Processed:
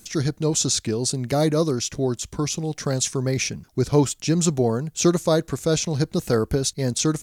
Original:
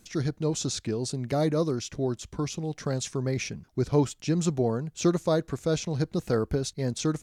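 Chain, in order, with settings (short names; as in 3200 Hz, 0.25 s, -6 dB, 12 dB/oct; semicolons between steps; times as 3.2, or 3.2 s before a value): high shelf 5600 Hz +11 dB; gain +5 dB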